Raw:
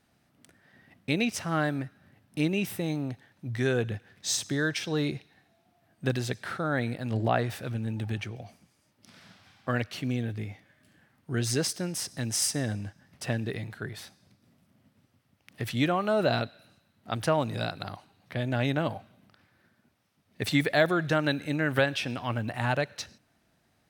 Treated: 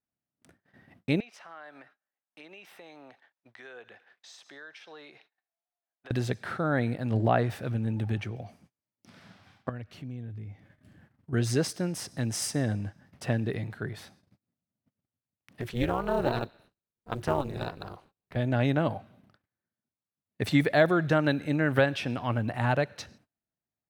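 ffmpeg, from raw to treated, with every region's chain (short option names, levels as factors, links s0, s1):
-filter_complex "[0:a]asettb=1/sr,asplit=3[s0][s1][s2];[s0]atrim=end=1.204[s3];[s1]atrim=start=1.2:end=6.11,asetpts=PTS-STARTPTS,afade=t=in:d=0.004:c=qsin,afade=t=out:st=4.906:d=0.004:c=qsin,highpass=280,acrossover=split=590 5200:gain=0.126 1 0.251[s4][s5][s6];[s4][s5][s6]amix=inputs=3:normalize=0,acompressor=threshold=0.00398:ratio=3:attack=3.2:release=140:knee=1:detection=peak[s7];[s2]atrim=start=6.106[s8];[s3][s7]acrossfade=d=0.004:c1=hsin:c2=qsin[s9];[s9][s8]acrossfade=d=0.004:c1=qsin:c2=hsin,asettb=1/sr,asplit=3[s10][s11][s12];[s10]atrim=end=9.694[s13];[s11]atrim=start=9.69:end=11.33,asetpts=PTS-STARTPTS,afade=t=in:d=0.004:c=qsin,afade=t=out:st=1.636:d=0.004:c=qsin,lowshelf=f=160:g=12,acompressor=threshold=0.00251:ratio=2:attack=3.2:release=140:knee=1:detection=peak[s14];[s12]atrim=start=11.326[s15];[s13][s14]acrossfade=d=0.004:c1=hsin:c2=qsin[s16];[s16][s15]acrossfade=d=0.004:c1=qsin:c2=hsin,asettb=1/sr,asplit=3[s17][s18][s19];[s17]atrim=end=15.614[s20];[s18]atrim=start=15.61:end=18.36,asetpts=PTS-STARTPTS,afade=t=in:d=0.004:c=qsin,afade=t=out:st=2.746:d=0.004:c=qsin,acrusher=bits=6:mode=log:mix=0:aa=0.000001,tremolo=f=250:d=1[s21];[s19]atrim=start=18.356[s22];[s20][s21]acrossfade=d=0.004:c1=hsin:c2=qsin[s23];[s23][s22]acrossfade=d=0.004:c1=qsin:c2=hsin,agate=range=0.0398:threshold=0.00112:ratio=16:detection=peak,highshelf=f=2200:g=-8.5,volume=1.33"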